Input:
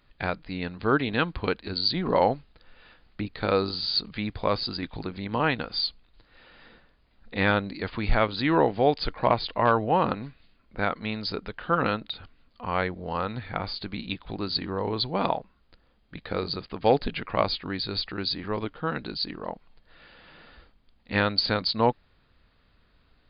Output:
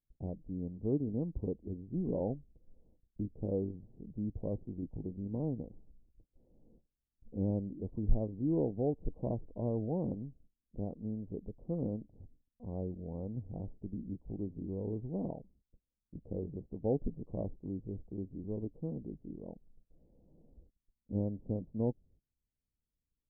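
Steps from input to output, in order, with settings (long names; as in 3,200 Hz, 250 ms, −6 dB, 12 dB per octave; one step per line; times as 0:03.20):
noise gate −54 dBFS, range −22 dB
Gaussian smoothing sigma 19 samples
level −4 dB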